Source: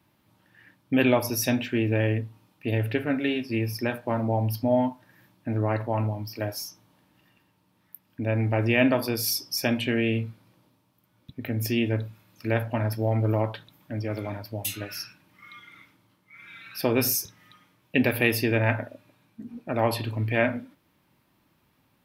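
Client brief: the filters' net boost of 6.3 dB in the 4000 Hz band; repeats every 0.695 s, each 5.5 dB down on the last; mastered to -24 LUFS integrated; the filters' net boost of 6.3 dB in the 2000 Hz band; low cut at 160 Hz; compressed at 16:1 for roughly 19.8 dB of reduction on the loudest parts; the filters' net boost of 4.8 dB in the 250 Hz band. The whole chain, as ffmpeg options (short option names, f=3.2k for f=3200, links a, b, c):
-af "highpass=160,equalizer=f=250:t=o:g=6,equalizer=f=2k:t=o:g=5.5,equalizer=f=4k:t=o:g=7.5,acompressor=threshold=-32dB:ratio=16,aecho=1:1:695|1390|2085|2780|3475|4170|4865:0.531|0.281|0.149|0.079|0.0419|0.0222|0.0118,volume=12.5dB"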